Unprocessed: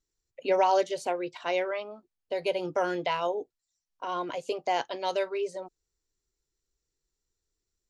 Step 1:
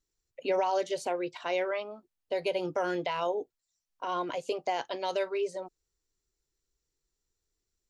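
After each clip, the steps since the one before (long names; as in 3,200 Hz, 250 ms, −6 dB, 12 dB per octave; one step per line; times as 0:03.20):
brickwall limiter −20.5 dBFS, peak gain reduction 6.5 dB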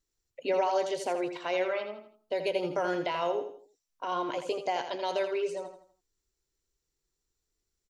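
repeating echo 82 ms, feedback 36%, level −8.5 dB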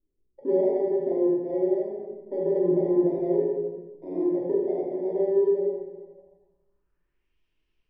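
samples in bit-reversed order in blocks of 32 samples
rectangular room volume 660 cubic metres, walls mixed, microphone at 2.7 metres
low-pass filter sweep 390 Hz → 2,800 Hz, 0:05.93–0:07.41
level −1.5 dB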